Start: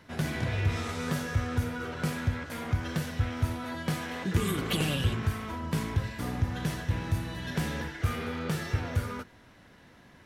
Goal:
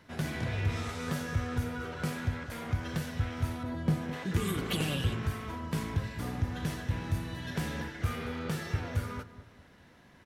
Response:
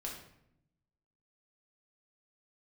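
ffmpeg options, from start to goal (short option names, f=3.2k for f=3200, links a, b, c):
-filter_complex "[0:a]asettb=1/sr,asplit=3[a][b][c];[a]atrim=end=3.634[d];[b]atrim=start=3.63:end=4.13,asetpts=PTS-STARTPTS,afade=t=in:d=0.004:c=qsin,afade=t=out:st=0.496:d=0.004:c=qsin,tiltshelf=f=680:g=7.5[e];[c]atrim=start=4.126[f];[d][e]acrossfade=d=0.004:c1=hsin:c2=qsin[g];[g][f]acrossfade=d=0.004:c1=qsin:c2=hsin,asplit=2[h][i];[i]adelay=208,lowpass=f=1.1k:p=1,volume=-13dB,asplit=2[j][k];[k]adelay=208,lowpass=f=1.1k:p=1,volume=0.42,asplit=2[l][m];[m]adelay=208,lowpass=f=1.1k:p=1,volume=0.42,asplit=2[n][o];[o]adelay=208,lowpass=f=1.1k:p=1,volume=0.42[p];[j][l][n][p]amix=inputs=4:normalize=0[q];[h][q]amix=inputs=2:normalize=0,volume=-3dB"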